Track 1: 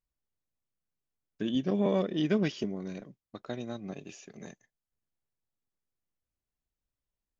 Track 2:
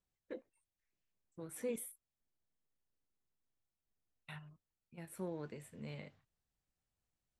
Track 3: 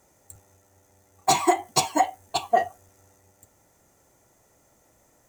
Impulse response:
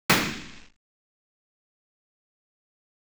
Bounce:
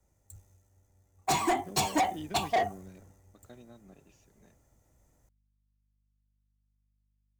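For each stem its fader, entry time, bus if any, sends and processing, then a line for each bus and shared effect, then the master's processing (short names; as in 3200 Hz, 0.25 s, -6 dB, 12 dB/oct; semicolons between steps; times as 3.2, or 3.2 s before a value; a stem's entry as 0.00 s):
-10.5 dB, 0.00 s, no send, compressor, threshold -29 dBFS, peak gain reduction 8 dB; hum 50 Hz, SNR 17 dB
off
-2.0 dB, 0.00 s, no send, low shelf 240 Hz +9.5 dB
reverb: off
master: vocal rider 0.5 s; soft clip -25.5 dBFS, distortion -5 dB; three-band expander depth 40%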